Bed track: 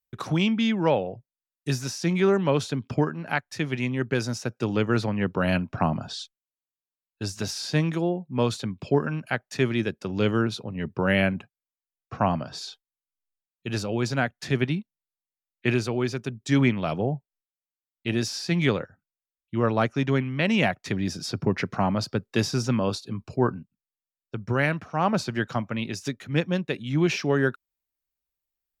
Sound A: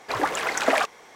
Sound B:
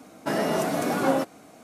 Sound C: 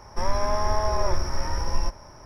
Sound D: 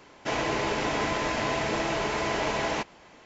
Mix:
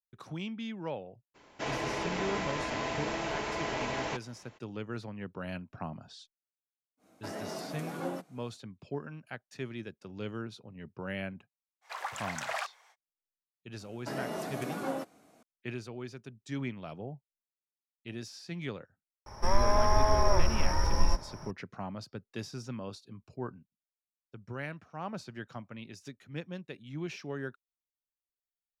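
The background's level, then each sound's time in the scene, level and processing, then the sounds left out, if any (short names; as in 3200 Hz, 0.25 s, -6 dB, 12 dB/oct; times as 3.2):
bed track -15.5 dB
1.34 add D -6.5 dB, fades 0.02 s
6.97 add B -15 dB, fades 0.10 s
11.81 add A -12 dB, fades 0.05 s + HPF 690 Hz 24 dB/oct
13.8 add B -12 dB
19.26 add C -1 dB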